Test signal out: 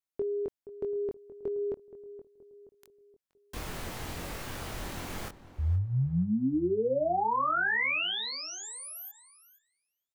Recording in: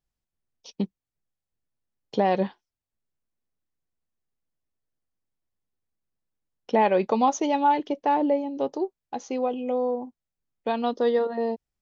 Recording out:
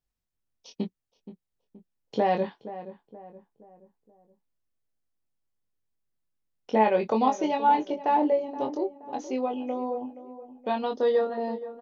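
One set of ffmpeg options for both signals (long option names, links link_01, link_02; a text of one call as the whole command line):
ffmpeg -i in.wav -filter_complex "[0:a]asplit=2[link_01][link_02];[link_02]adelay=23,volume=-4.5dB[link_03];[link_01][link_03]amix=inputs=2:normalize=0,asplit=2[link_04][link_05];[link_05]adelay=474,lowpass=frequency=1200:poles=1,volume=-13.5dB,asplit=2[link_06][link_07];[link_07]adelay=474,lowpass=frequency=1200:poles=1,volume=0.46,asplit=2[link_08][link_09];[link_09]adelay=474,lowpass=frequency=1200:poles=1,volume=0.46,asplit=2[link_10][link_11];[link_11]adelay=474,lowpass=frequency=1200:poles=1,volume=0.46[link_12];[link_04][link_06][link_08][link_10][link_12]amix=inputs=5:normalize=0,acrossover=split=3000[link_13][link_14];[link_14]acompressor=threshold=-40dB:ratio=4:attack=1:release=60[link_15];[link_13][link_15]amix=inputs=2:normalize=0,volume=-3dB" out.wav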